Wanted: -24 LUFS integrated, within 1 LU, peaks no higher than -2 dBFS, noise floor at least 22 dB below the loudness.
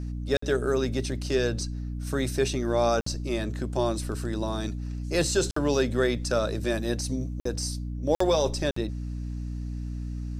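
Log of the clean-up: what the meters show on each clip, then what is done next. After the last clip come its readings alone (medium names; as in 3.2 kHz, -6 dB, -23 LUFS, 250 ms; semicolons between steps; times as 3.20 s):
dropouts 6; longest dropout 54 ms; hum 60 Hz; highest harmonic 300 Hz; hum level -30 dBFS; loudness -28.0 LUFS; peak level -11.5 dBFS; loudness target -24.0 LUFS
-> interpolate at 0.37/3.01/5.51/7.40/8.15/8.71 s, 54 ms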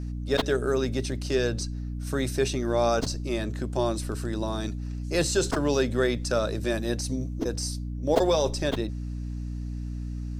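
dropouts 0; hum 60 Hz; highest harmonic 300 Hz; hum level -30 dBFS
-> de-hum 60 Hz, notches 5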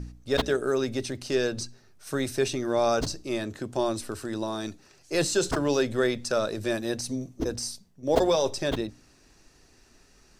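hum not found; loudness -28.0 LUFS; peak level -8.5 dBFS; loudness target -24.0 LUFS
-> trim +4 dB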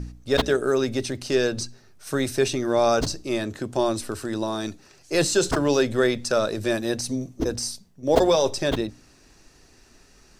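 loudness -24.0 LUFS; peak level -4.5 dBFS; noise floor -55 dBFS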